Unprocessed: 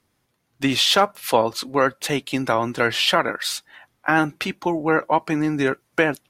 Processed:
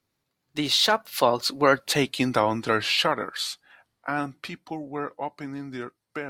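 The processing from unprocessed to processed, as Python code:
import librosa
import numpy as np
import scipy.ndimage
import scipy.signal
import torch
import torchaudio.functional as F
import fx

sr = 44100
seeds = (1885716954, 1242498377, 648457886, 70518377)

y = fx.doppler_pass(x, sr, speed_mps=33, closest_m=24.0, pass_at_s=1.91)
y = fx.peak_eq(y, sr, hz=4300.0, db=6.0, octaves=0.36)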